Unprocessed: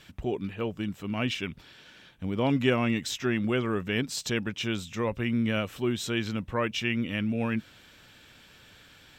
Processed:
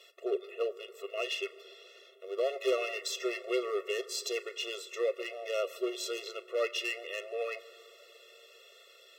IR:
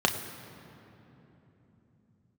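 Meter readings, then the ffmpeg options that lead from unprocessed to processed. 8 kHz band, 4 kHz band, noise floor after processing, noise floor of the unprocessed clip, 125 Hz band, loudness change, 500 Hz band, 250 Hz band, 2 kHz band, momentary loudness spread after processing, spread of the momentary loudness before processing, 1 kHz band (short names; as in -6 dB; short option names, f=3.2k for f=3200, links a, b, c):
-2.5 dB, -3.5 dB, -58 dBFS, -55 dBFS, under -40 dB, -5.5 dB, -0.5 dB, -16.5 dB, -5.5 dB, 21 LU, 8 LU, -7.0 dB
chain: -filter_complex "[0:a]volume=25dB,asoftclip=hard,volume=-25dB,asplit=2[a][b];[1:a]atrim=start_sample=2205,asetrate=38808,aresample=44100[c];[b][c]afir=irnorm=-1:irlink=0,volume=-21dB[d];[a][d]amix=inputs=2:normalize=0,afftfilt=real='re*eq(mod(floor(b*sr/1024/360),2),1)':imag='im*eq(mod(floor(b*sr/1024/360),2),1)':win_size=1024:overlap=0.75"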